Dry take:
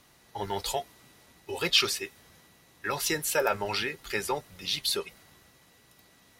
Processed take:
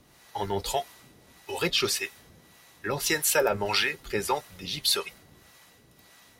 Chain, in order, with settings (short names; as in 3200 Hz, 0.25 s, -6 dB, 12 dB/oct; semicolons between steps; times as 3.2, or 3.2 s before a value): harmonic tremolo 1.7 Hz, depth 70%, crossover 590 Hz; gain +6.5 dB